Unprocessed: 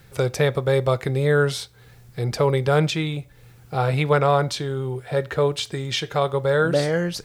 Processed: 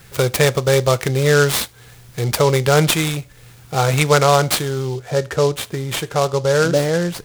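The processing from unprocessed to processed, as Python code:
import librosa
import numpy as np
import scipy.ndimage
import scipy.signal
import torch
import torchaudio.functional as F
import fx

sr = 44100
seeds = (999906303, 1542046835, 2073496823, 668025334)

y = fx.high_shelf(x, sr, hz=2500.0, db=fx.steps((0.0, 9.5), (4.95, -4.0)))
y = fx.noise_mod_delay(y, sr, seeds[0], noise_hz=4500.0, depth_ms=0.043)
y = y * 10.0 ** (4.0 / 20.0)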